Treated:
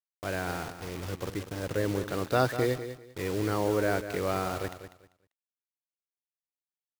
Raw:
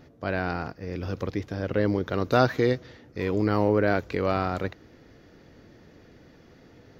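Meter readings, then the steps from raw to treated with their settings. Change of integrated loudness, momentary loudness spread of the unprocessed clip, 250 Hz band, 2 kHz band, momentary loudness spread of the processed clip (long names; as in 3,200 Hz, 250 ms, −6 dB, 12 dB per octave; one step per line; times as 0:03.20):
−4.5 dB, 11 LU, −6.0 dB, −4.0 dB, 11 LU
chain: parametric band 220 Hz −9 dB 0.27 octaves
bit-depth reduction 6 bits, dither none
on a send: repeating echo 196 ms, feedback 22%, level −11 dB
on the sum: level −4.5 dB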